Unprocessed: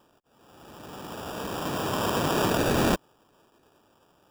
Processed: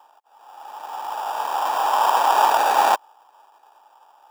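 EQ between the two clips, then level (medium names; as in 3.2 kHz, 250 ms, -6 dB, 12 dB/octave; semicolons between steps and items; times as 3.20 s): resonant high-pass 840 Hz, resonance Q 7; +2.5 dB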